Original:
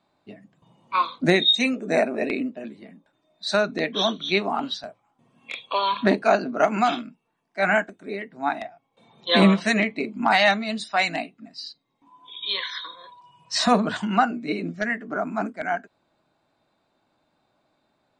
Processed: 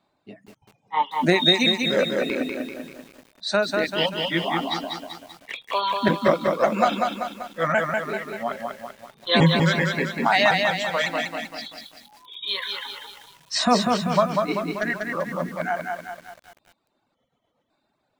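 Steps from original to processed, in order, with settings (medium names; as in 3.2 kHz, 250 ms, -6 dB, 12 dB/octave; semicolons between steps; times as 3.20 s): pitch shift switched off and on -3 st, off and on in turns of 553 ms; reverb removal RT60 1.2 s; bit-crushed delay 194 ms, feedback 55%, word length 8-bit, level -3.5 dB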